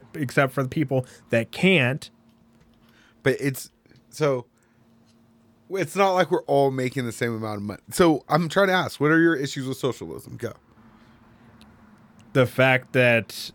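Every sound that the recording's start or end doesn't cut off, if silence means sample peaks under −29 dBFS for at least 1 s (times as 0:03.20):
0:03.25–0:04.40
0:05.73–0:10.51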